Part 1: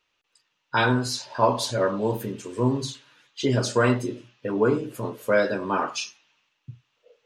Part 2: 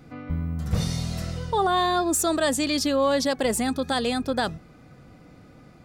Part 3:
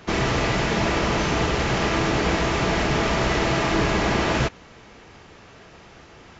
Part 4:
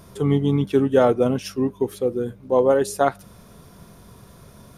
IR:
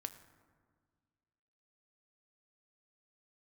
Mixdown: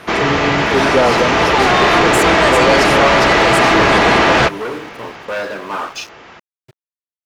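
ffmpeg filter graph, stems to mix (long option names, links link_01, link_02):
-filter_complex "[0:a]asoftclip=type=tanh:threshold=-25dB,acrusher=bits=8:mix=0:aa=0.000001,aeval=exprs='sgn(val(0))*max(abs(val(0))-0.0112,0)':channel_layout=same,volume=-0.5dB[link_01];[1:a]volume=-2dB[link_02];[2:a]dynaudnorm=framelen=310:gausssize=9:maxgain=6.5dB,highshelf=frequency=5400:gain=-7.5,volume=0dB[link_03];[3:a]volume=-3dB[link_04];[link_01][link_02][link_03][link_04]amix=inputs=4:normalize=0,asplit=2[link_05][link_06];[link_06]highpass=frequency=720:poles=1,volume=18dB,asoftclip=type=tanh:threshold=-1.5dB[link_07];[link_05][link_07]amix=inputs=2:normalize=0,lowpass=frequency=3600:poles=1,volume=-6dB"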